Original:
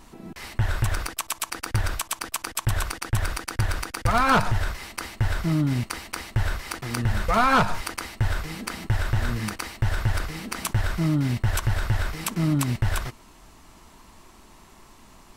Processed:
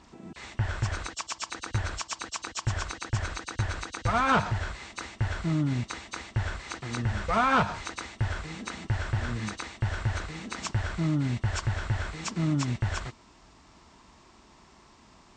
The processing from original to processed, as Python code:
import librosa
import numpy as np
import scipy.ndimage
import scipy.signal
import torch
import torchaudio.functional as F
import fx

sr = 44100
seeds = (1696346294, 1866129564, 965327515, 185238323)

y = fx.freq_compress(x, sr, knee_hz=2700.0, ratio=1.5)
y = scipy.signal.sosfilt(scipy.signal.butter(2, 47.0, 'highpass', fs=sr, output='sos'), y)
y = y * 10.0 ** (-4.0 / 20.0)